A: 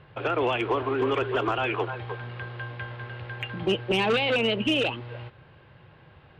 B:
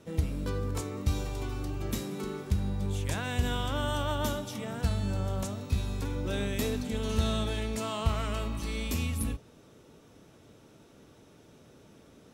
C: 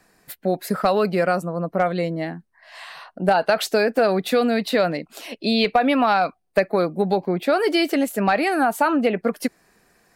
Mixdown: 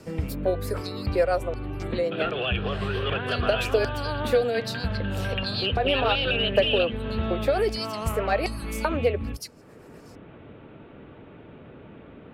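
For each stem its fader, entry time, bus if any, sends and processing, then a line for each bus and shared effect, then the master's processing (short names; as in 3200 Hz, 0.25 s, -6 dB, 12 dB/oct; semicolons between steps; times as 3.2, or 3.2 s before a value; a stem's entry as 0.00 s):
-4.0 dB, 1.95 s, no send, band shelf 2800 Hz +8.5 dB; fixed phaser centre 1400 Hz, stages 8
0.0 dB, 0.00 s, no send, inverse Chebyshev low-pass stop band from 5300 Hz, stop band 40 dB
-5.0 dB, 0.00 s, no send, rotary speaker horn 8 Hz; LFO high-pass square 1.3 Hz 480–4900 Hz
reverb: off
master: three-band squash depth 40%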